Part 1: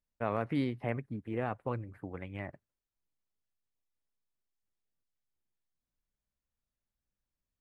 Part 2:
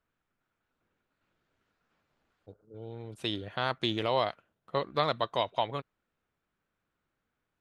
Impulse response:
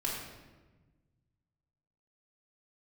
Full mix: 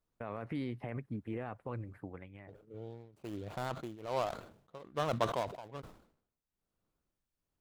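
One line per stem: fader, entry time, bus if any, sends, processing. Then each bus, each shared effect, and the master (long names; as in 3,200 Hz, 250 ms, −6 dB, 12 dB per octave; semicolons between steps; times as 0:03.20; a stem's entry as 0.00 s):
−0.5 dB, 0.00 s, no send, brickwall limiter −28.5 dBFS, peak gain reduction 10.5 dB; automatic ducking −12 dB, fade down 0.50 s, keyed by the second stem
+0.5 dB, 0.00 s, no send, running median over 25 samples; shaped tremolo triangle 1.2 Hz, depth 95%; level that may fall only so fast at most 96 dB per second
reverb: not used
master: no processing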